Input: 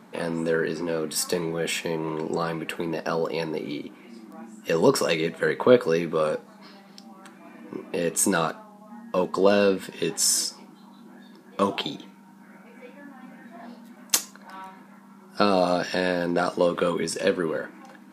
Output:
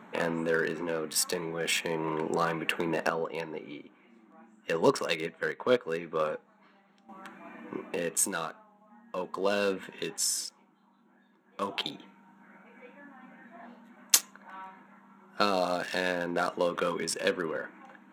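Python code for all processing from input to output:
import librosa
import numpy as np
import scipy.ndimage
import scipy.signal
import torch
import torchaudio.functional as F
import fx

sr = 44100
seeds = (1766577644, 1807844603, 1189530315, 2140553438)

y = fx.chain(x, sr, fx.lowpass(hz=9900.0, slope=12),
    fx.upward_expand(threshold_db=-37.0, expansion=1.5), at=(3.09, 7.09))
y = fx.wiener(y, sr, points=9)
y = fx.tilt_shelf(y, sr, db=-5.0, hz=760.0)
y = fx.rider(y, sr, range_db=10, speed_s=0.5)
y = y * librosa.db_to_amplitude(-5.5)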